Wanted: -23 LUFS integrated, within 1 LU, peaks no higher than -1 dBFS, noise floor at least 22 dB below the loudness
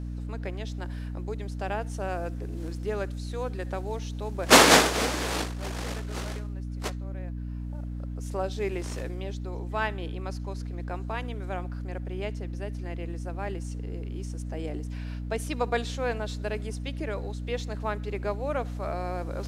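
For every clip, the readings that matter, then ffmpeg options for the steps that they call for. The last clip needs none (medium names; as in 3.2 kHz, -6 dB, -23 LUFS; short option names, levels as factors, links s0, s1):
hum 60 Hz; highest harmonic 300 Hz; hum level -32 dBFS; loudness -29.5 LUFS; peak level -5.5 dBFS; loudness target -23.0 LUFS
-> -af "bandreject=f=60:t=h:w=4,bandreject=f=120:t=h:w=4,bandreject=f=180:t=h:w=4,bandreject=f=240:t=h:w=4,bandreject=f=300:t=h:w=4"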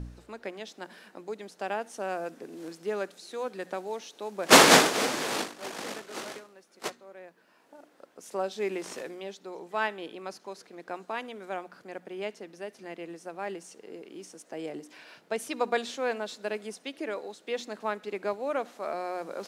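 hum not found; loudness -29.0 LUFS; peak level -5.0 dBFS; loudness target -23.0 LUFS
-> -af "volume=2,alimiter=limit=0.891:level=0:latency=1"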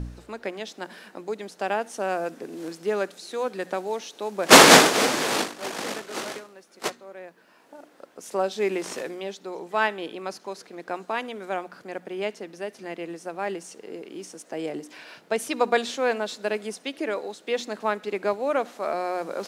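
loudness -23.5 LUFS; peak level -1.0 dBFS; noise floor -56 dBFS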